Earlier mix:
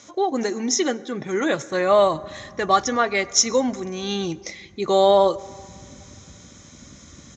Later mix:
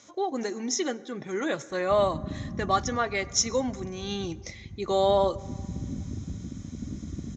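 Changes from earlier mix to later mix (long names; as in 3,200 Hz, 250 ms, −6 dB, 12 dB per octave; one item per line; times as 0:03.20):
speech −7.0 dB
background +11.0 dB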